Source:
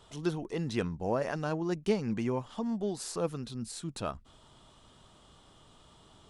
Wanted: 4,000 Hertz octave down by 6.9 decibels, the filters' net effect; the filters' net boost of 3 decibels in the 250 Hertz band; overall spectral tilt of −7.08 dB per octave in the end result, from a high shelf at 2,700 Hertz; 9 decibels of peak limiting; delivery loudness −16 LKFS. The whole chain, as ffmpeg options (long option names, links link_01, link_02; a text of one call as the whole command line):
ffmpeg -i in.wav -af "equalizer=frequency=250:width_type=o:gain=4,highshelf=frequency=2700:gain=-4,equalizer=frequency=4000:width_type=o:gain=-5.5,volume=18.5dB,alimiter=limit=-5dB:level=0:latency=1" out.wav